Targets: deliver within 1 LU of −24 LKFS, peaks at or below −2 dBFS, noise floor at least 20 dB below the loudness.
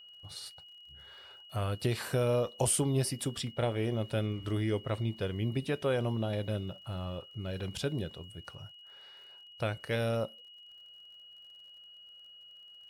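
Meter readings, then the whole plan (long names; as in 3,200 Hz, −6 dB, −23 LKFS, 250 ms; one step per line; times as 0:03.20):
crackle rate 40 per second; interfering tone 2,900 Hz; level of the tone −51 dBFS; integrated loudness −33.5 LKFS; sample peak −17.0 dBFS; target loudness −24.0 LKFS
→ click removal
notch filter 2,900 Hz, Q 30
level +9.5 dB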